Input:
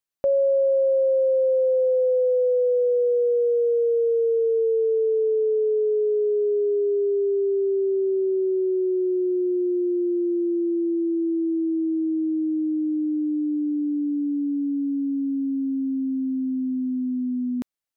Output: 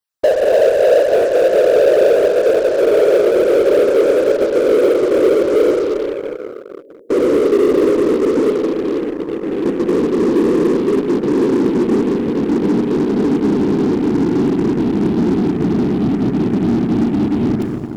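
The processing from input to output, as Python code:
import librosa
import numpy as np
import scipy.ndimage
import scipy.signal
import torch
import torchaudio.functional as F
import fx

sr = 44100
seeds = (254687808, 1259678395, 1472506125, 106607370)

p1 = fx.spec_dropout(x, sr, seeds[0], share_pct=21)
p2 = fx.differentiator(p1, sr, at=(5.74, 7.07))
p3 = fx.highpass(p2, sr, hz=590.0, slope=12, at=(8.51, 9.66))
p4 = fx.whisperise(p3, sr, seeds[1])
p5 = fx.rev_schroeder(p4, sr, rt60_s=2.7, comb_ms=30, drr_db=3.0)
p6 = fx.fuzz(p5, sr, gain_db=32.0, gate_db=-40.0)
p7 = p5 + (p6 * librosa.db_to_amplitude(-11.0))
y = p7 * librosa.db_to_amplitude(4.0)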